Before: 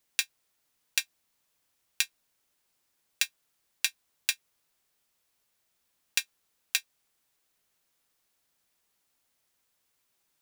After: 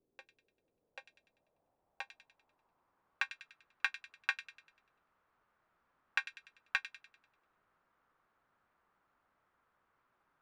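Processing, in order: feedback echo behind a high-pass 98 ms, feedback 45%, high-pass 2.6 kHz, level -9 dB; low-pass sweep 400 Hz -> 1.3 kHz, 0.11–3.41 s; trim +4 dB

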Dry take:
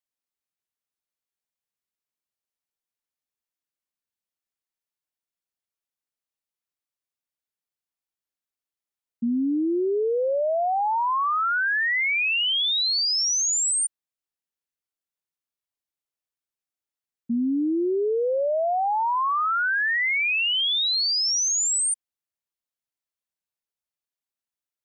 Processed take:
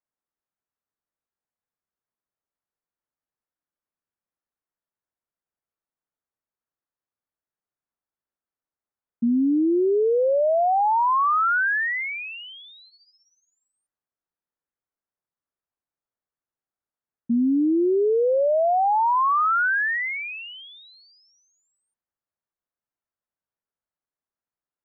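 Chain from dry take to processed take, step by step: 12.86–13.76 s: robot voice 258 Hz; low-pass 1.7 kHz 24 dB/octave; trim +3.5 dB

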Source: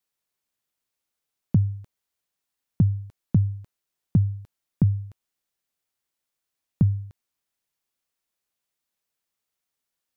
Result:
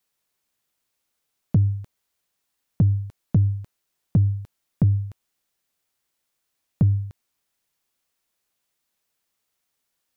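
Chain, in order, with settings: in parallel at +0.5 dB: peak limiter -22 dBFS, peak gain reduction 11.5 dB; on the sum: saturation -9.5 dBFS, distortion -21 dB

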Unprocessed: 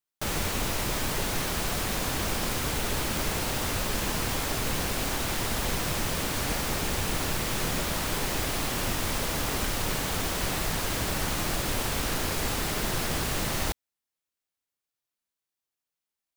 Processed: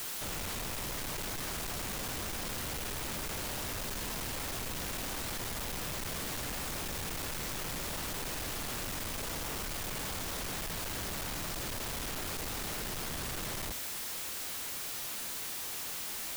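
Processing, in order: one-bit comparator; trim -8 dB

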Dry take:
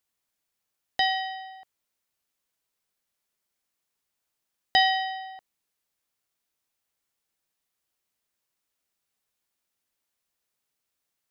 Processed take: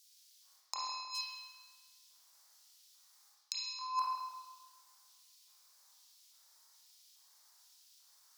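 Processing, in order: treble shelf 2.8 kHz +11 dB; reverse; compression 20:1, threshold -28 dBFS, peak gain reduction 19 dB; reverse; inverted gate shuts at -29 dBFS, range -26 dB; in parallel at -11 dB: integer overflow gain 38.5 dB; on the sum: LFO high-pass square 0.88 Hz 730–2200 Hz; ten-band graphic EQ 125 Hz -9 dB, 250 Hz +7 dB, 2 kHz -11 dB, 4 kHz +11 dB; spring tank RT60 1.8 s, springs 30/35 ms, chirp 60 ms, DRR -6 dB; speed mistake 33 rpm record played at 45 rpm; trim +3 dB

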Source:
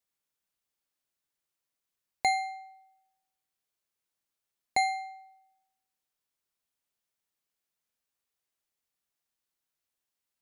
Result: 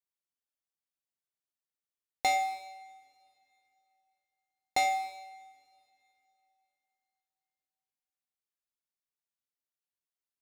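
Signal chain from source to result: waveshaping leveller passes 3; two-slope reverb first 0.93 s, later 3.2 s, from -20 dB, DRR 7 dB; trim -6.5 dB

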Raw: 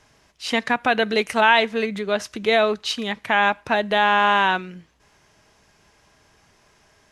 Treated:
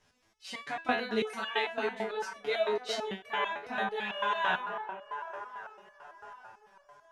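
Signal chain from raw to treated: chorus 2.7 Hz, delay 18.5 ms, depth 5.8 ms; feedback echo behind a band-pass 385 ms, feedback 66%, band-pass 820 Hz, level -6 dB; resonator arpeggio 9 Hz 84–570 Hz; trim +2 dB

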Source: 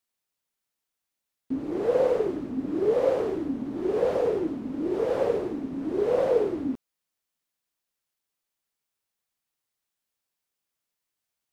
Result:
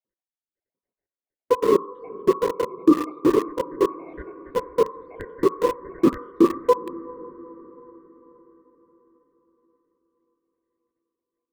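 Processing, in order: random holes in the spectrogram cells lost 81%; Chebyshev band-pass 210–1300 Hz, order 3; peaking EQ 940 Hz -12.5 dB 0.25 oct; on a send: echo that smears into a reverb 470 ms, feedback 50%, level -15 dB; on the sum: dynamic bell 720 Hz, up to -4 dB, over -53 dBFS, Q 2.5; ring modulator 750 Hz; reverberation RT60 0.70 s, pre-delay 3 ms, DRR 8 dB; in parallel at -3.5 dB: small samples zeroed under -29.5 dBFS; on the sum: loudness maximiser +10.5 dB; trim -4.5 dB

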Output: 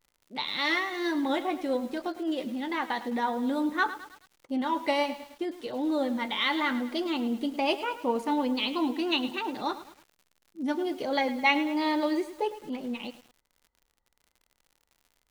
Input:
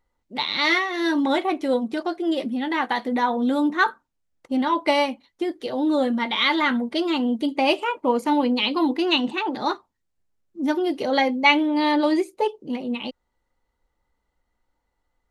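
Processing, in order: vibrato 1.2 Hz 52 cents; crackle 88 per s -41 dBFS; bit-crushed delay 106 ms, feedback 55%, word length 6-bit, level -13 dB; trim -7 dB

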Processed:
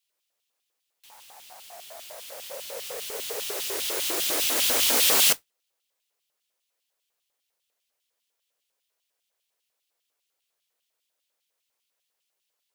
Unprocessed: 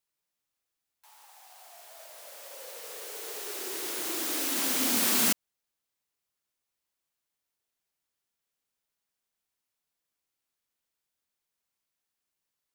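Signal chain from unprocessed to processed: LFO high-pass square 5 Hz 500–3000 Hz; modulation noise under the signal 12 dB; trim +4.5 dB

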